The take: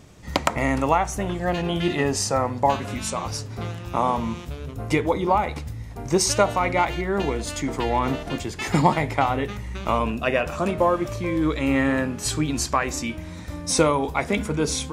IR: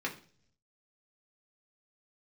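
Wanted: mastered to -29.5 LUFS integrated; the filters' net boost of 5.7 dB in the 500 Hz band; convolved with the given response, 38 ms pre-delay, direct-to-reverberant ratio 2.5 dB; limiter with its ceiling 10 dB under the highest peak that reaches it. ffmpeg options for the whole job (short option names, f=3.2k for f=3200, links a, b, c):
-filter_complex "[0:a]equalizer=f=500:t=o:g=7,alimiter=limit=-10.5dB:level=0:latency=1,asplit=2[a][b];[1:a]atrim=start_sample=2205,adelay=38[c];[b][c]afir=irnorm=-1:irlink=0,volume=-7.5dB[d];[a][d]amix=inputs=2:normalize=0,volume=-8dB"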